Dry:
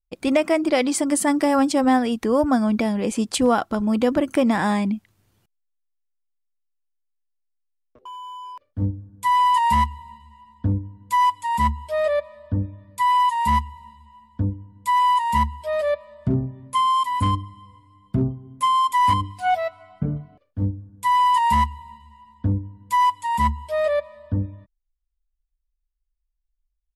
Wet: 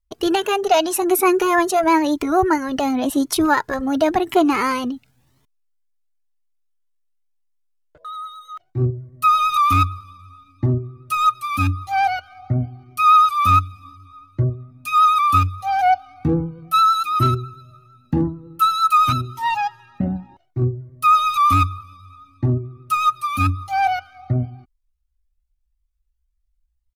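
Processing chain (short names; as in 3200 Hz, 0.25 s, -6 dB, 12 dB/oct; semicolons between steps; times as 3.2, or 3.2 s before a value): pitch shift +4 st; vibrato 9 Hz 27 cents; cascading flanger rising 0.93 Hz; gain +7.5 dB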